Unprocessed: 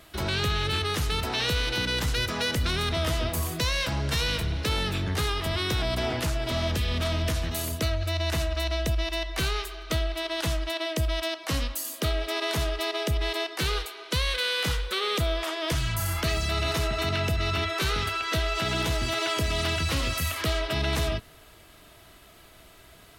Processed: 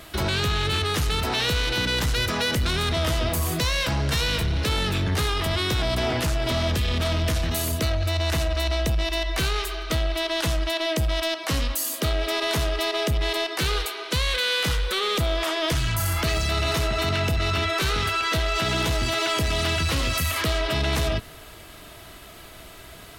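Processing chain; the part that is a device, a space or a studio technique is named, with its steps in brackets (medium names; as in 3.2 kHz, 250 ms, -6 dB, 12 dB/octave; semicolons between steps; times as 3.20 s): soft clipper into limiter (saturation -21.5 dBFS, distortion -19 dB; peak limiter -26.5 dBFS, peak gain reduction 4 dB); trim +8.5 dB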